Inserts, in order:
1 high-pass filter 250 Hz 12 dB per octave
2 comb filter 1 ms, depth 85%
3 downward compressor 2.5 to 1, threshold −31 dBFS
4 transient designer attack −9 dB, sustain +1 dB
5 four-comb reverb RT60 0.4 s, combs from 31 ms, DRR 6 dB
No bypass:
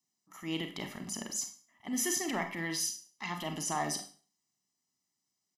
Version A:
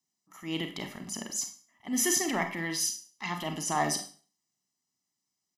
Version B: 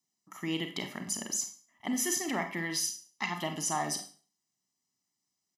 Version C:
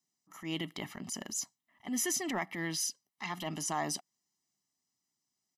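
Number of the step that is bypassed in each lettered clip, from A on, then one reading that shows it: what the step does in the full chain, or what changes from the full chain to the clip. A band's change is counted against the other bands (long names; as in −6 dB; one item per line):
3, change in crest factor +1.5 dB
4, change in integrated loudness +2.0 LU
5, change in momentary loudness spread +1 LU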